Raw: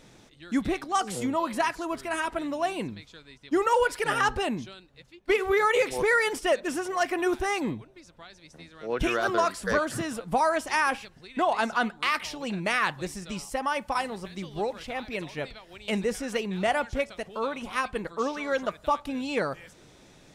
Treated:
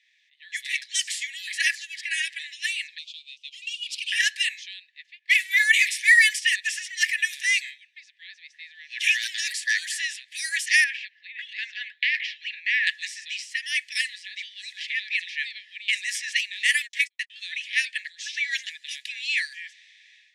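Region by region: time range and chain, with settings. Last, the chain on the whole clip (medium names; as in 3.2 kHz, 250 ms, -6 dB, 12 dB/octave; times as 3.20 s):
2.98–4.12 s: companding laws mixed up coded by mu + steep high-pass 2.6 kHz 72 dB/octave + transient shaper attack +3 dB, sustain -3 dB
10.84–12.87 s: low-pass 2.9 kHz + compression 2.5:1, threshold -27 dBFS
16.39–17.30 s: gate -38 dBFS, range -48 dB + treble shelf 11 kHz +10 dB
whole clip: level-controlled noise filter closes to 2.5 kHz, open at -20.5 dBFS; Chebyshev high-pass 1.7 kHz, order 10; level rider gain up to 12 dB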